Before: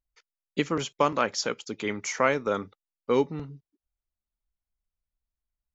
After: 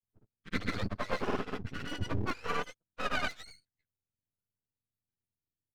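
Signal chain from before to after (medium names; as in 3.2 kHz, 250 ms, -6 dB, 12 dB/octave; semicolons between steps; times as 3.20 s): spectrum inverted on a logarithmic axis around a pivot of 780 Hz; half-wave rectifier; granulator, spray 100 ms, pitch spread up and down by 0 st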